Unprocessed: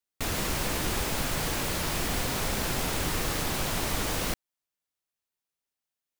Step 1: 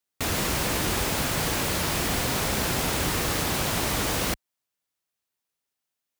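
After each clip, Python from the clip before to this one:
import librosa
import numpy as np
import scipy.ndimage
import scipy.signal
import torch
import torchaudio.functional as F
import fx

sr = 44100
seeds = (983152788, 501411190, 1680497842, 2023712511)

y = scipy.signal.sosfilt(scipy.signal.butter(2, 48.0, 'highpass', fs=sr, output='sos'), x)
y = y * 10.0 ** (4.0 / 20.0)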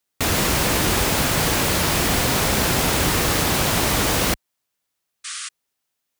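y = fx.spec_paint(x, sr, seeds[0], shape='noise', start_s=5.24, length_s=0.25, low_hz=1100.0, high_hz=10000.0, level_db=-38.0)
y = y * 10.0 ** (6.5 / 20.0)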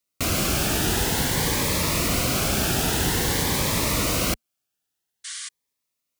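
y = fx.notch_cascade(x, sr, direction='rising', hz=0.5)
y = y * 10.0 ** (-2.5 / 20.0)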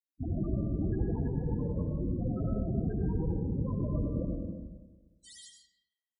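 y = fx.spec_topn(x, sr, count=8)
y = fx.rev_freeverb(y, sr, rt60_s=1.3, hf_ratio=0.55, predelay_ms=50, drr_db=1.0)
y = y * 10.0 ** (-4.5 / 20.0)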